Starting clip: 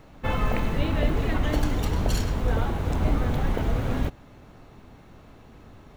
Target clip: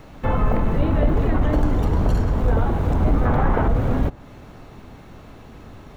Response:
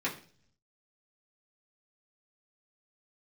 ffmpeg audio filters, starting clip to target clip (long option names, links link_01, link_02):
-filter_complex "[0:a]asettb=1/sr,asplit=3[link_01][link_02][link_03];[link_01]atrim=end=3.254[link_04];[link_02]atrim=start=3.25:end=3.68,asetpts=PTS-STARTPTS,afade=type=in:duration=0.004:curve=qsin,afade=type=out:start_time=0.426:duration=0.004:curve=qsin,equalizer=frequency=1300:width=0.64:gain=9.5[link_05];[link_03]atrim=start=3.676[link_06];[link_04][link_05]acrossfade=duration=0.004:curve1=hsin:curve2=qsin[link_07];[link_07][link_06]acrossfade=duration=0.004:curve1=qsin:curve2=hsin,acrossover=split=1500[link_08][link_09];[link_09]acompressor=threshold=-53dB:ratio=5[link_10];[link_08][link_10]amix=inputs=2:normalize=0,asoftclip=type=tanh:threshold=-16dB,volume=7dB"